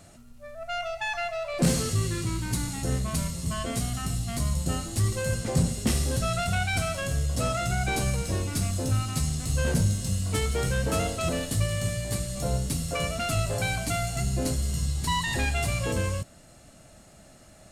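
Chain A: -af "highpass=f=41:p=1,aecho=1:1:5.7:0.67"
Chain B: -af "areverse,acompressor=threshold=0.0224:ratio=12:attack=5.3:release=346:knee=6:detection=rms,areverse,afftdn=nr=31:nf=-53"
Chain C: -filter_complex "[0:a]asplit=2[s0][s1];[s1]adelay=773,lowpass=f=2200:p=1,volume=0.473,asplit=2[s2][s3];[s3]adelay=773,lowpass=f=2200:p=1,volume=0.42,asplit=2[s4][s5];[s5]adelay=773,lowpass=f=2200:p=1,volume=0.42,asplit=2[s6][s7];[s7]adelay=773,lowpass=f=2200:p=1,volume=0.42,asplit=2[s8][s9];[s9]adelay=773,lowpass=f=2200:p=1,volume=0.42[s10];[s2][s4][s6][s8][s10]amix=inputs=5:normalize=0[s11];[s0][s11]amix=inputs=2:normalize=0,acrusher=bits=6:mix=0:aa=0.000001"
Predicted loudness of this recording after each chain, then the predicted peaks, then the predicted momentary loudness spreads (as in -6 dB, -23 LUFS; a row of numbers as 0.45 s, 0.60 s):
-27.5 LUFS, -39.5 LUFS, -27.0 LUFS; -8.5 dBFS, -27.0 dBFS, -10.5 dBFS; 5 LU, 3 LU, 7 LU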